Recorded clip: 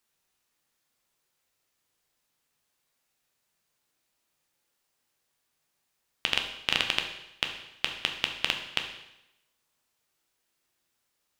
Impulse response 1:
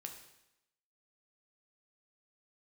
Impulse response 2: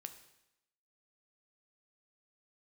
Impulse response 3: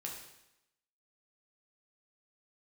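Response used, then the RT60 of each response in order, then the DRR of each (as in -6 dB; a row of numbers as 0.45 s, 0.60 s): 1; 0.85 s, 0.85 s, 0.85 s; 3.0 dB, 7.5 dB, -1.5 dB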